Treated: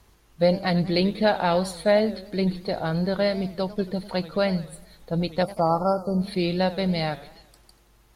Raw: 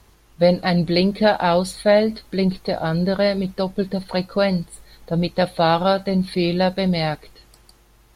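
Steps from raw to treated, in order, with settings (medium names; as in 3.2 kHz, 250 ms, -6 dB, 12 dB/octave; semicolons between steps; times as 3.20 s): spectral selection erased 5.43–6.20 s, 1.4–4.5 kHz; modulated delay 91 ms, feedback 52%, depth 196 cents, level -17 dB; trim -4.5 dB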